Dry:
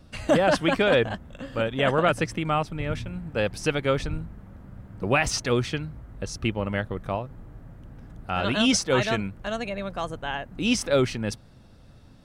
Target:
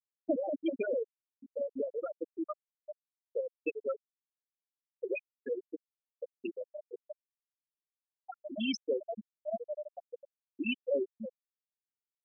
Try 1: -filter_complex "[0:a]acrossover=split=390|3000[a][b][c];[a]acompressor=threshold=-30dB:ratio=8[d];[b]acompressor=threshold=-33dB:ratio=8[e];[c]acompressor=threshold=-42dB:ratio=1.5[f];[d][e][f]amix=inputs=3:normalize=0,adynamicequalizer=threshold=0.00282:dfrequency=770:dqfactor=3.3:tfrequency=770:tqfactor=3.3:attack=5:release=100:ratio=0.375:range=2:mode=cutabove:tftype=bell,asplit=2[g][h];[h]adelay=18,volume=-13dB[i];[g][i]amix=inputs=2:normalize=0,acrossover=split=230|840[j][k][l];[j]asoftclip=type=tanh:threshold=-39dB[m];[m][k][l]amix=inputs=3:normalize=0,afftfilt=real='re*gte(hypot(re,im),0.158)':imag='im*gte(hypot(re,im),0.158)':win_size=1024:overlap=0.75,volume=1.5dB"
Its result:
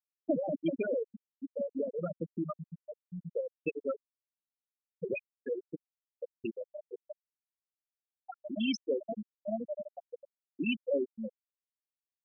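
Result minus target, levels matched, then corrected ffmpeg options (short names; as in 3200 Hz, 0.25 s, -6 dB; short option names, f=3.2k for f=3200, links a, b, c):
soft clip: distortion -6 dB
-filter_complex "[0:a]acrossover=split=390|3000[a][b][c];[a]acompressor=threshold=-30dB:ratio=8[d];[b]acompressor=threshold=-33dB:ratio=8[e];[c]acompressor=threshold=-42dB:ratio=1.5[f];[d][e][f]amix=inputs=3:normalize=0,adynamicequalizer=threshold=0.00282:dfrequency=770:dqfactor=3.3:tfrequency=770:tqfactor=3.3:attack=5:release=100:ratio=0.375:range=2:mode=cutabove:tftype=bell,asplit=2[g][h];[h]adelay=18,volume=-13dB[i];[g][i]amix=inputs=2:normalize=0,acrossover=split=230|840[j][k][l];[j]asoftclip=type=tanh:threshold=-51dB[m];[m][k][l]amix=inputs=3:normalize=0,afftfilt=real='re*gte(hypot(re,im),0.158)':imag='im*gte(hypot(re,im),0.158)':win_size=1024:overlap=0.75,volume=1.5dB"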